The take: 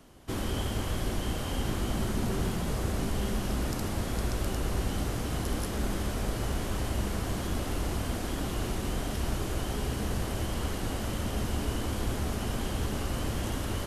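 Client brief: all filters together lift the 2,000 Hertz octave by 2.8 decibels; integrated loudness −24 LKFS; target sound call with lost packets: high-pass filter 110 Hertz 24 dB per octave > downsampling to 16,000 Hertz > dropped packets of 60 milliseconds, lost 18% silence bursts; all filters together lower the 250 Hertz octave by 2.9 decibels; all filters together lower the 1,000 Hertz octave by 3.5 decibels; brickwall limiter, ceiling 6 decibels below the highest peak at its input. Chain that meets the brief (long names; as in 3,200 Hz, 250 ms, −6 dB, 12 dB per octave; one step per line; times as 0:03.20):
parametric band 250 Hz −3.5 dB
parametric band 1,000 Hz −6 dB
parametric band 2,000 Hz +5.5 dB
brickwall limiter −24.5 dBFS
high-pass filter 110 Hz 24 dB per octave
downsampling to 16,000 Hz
dropped packets of 60 ms, lost 18% silence bursts
level +14.5 dB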